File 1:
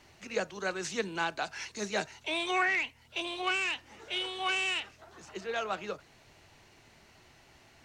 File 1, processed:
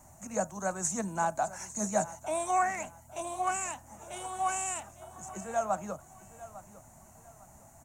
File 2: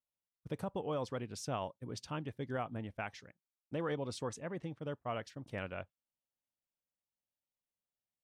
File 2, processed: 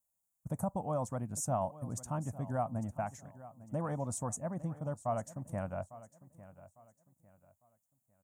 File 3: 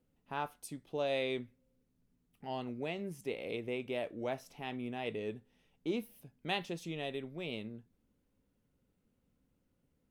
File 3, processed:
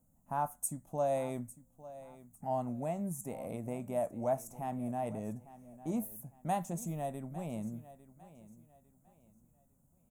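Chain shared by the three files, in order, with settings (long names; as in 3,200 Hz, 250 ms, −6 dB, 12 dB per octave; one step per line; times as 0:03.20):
drawn EQ curve 220 Hz 0 dB, 430 Hz −16 dB, 640 Hz +2 dB, 980 Hz −2 dB, 3,100 Hz −25 dB, 4,800 Hz −20 dB, 6,900 Hz +7 dB
on a send: repeating echo 852 ms, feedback 31%, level −17 dB
on the sum: level +6 dB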